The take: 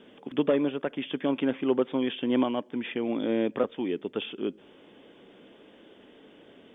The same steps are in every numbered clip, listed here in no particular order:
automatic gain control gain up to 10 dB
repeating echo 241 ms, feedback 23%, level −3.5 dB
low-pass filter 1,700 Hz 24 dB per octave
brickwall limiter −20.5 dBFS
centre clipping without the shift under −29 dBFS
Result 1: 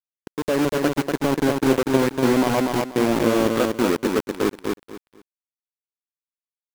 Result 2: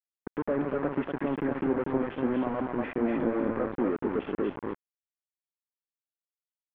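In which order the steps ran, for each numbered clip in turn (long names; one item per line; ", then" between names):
low-pass filter, then brickwall limiter, then centre clipping without the shift, then automatic gain control, then repeating echo
automatic gain control, then brickwall limiter, then repeating echo, then centre clipping without the shift, then low-pass filter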